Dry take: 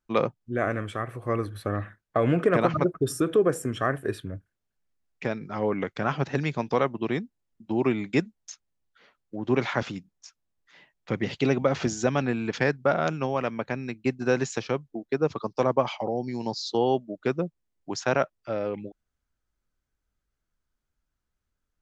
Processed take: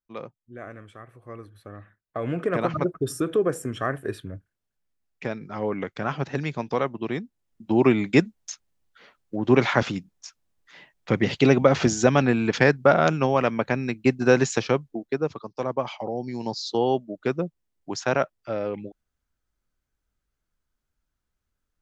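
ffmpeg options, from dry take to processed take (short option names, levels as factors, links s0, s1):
-af "volume=4.73,afade=t=in:st=1.84:d=0.97:silence=0.251189,afade=t=in:st=7.2:d=0.57:silence=0.446684,afade=t=out:st=14.66:d=0.78:silence=0.237137,afade=t=in:st=15.44:d=1.11:silence=0.421697"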